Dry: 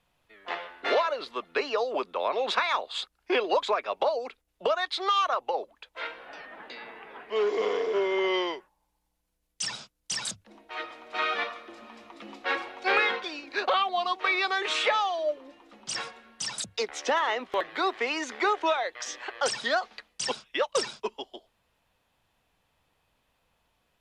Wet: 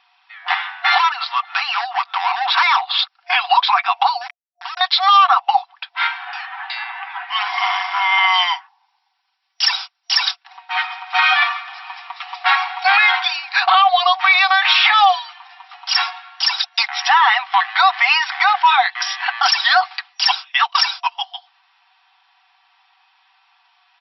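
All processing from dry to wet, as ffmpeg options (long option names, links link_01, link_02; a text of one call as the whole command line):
ffmpeg -i in.wav -filter_complex "[0:a]asettb=1/sr,asplit=3[link_01][link_02][link_03];[link_01]atrim=end=0.984[link_04];[link_02]atrim=start=0.98:end=2.99,asetpts=PTS-STARTPTS,afade=type=in:duration=0.004:curve=qsin,afade=type=out:start_time=2.006:duration=0.004:curve=qsin,highshelf=frequency=3800:gain=-8.5,acompressor=mode=upward:threshold=-30dB:ratio=2.5:attack=3.2:release=140:knee=2.83:detection=peak,asoftclip=type=hard:threshold=-28dB[link_05];[link_03]atrim=start=2.986[link_06];[link_04][link_05]acrossfade=duration=0.004:curve1=hsin:curve2=qsin[link_07];[link_07][link_06]acrossfade=duration=0.004:curve1=qsin:curve2=hsin,asettb=1/sr,asplit=3[link_08][link_09][link_10];[link_08]atrim=end=4.214[link_11];[link_09]atrim=start=4.21:end=4.81,asetpts=PTS-STARTPTS,afade=type=in:duration=0.004:curve=qsin,afade=type=out:start_time=0.596:duration=0.004:curve=qsin,acompressor=threshold=-40dB:ratio=5:attack=3.2:release=140:knee=1:detection=peak,aeval=exprs='val(0)*gte(abs(val(0)),0.00944)':channel_layout=same[link_12];[link_10]atrim=start=4.806[link_13];[link_11][link_12]acrossfade=duration=0.004:curve1=hsin:curve2=qsin[link_14];[link_14][link_13]acrossfade=duration=0.004:curve1=qsin:curve2=hsin,afftfilt=real='re*between(b*sr/4096,700,5700)':imag='im*between(b*sr/4096,700,5700)':win_size=4096:overlap=0.75,aecho=1:1:5.2:0.55,alimiter=level_in=19dB:limit=-1dB:release=50:level=0:latency=1,volume=-3dB" out.wav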